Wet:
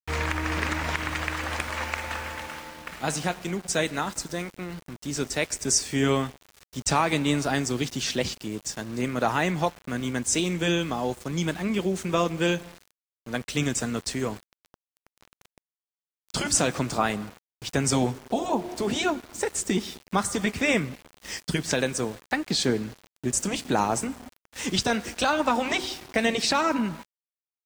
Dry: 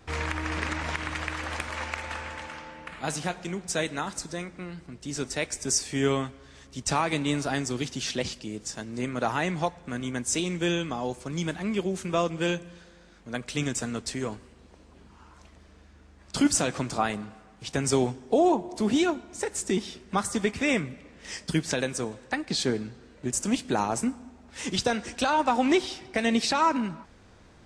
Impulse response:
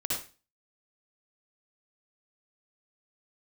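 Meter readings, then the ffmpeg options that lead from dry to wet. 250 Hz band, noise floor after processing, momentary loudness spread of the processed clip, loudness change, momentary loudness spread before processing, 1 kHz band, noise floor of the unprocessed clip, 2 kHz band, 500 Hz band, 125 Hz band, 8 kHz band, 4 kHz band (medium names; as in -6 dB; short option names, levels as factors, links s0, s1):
+0.5 dB, under -85 dBFS, 11 LU, +1.5 dB, 13 LU, +1.0 dB, -54 dBFS, +3.0 dB, +1.0 dB, +2.5 dB, +3.0 dB, +3.0 dB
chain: -af "aeval=exprs='val(0)*gte(abs(val(0)),0.00708)':c=same,afftfilt=real='re*lt(hypot(re,im),0.631)':imag='im*lt(hypot(re,im),0.631)':win_size=1024:overlap=0.75,volume=1.41"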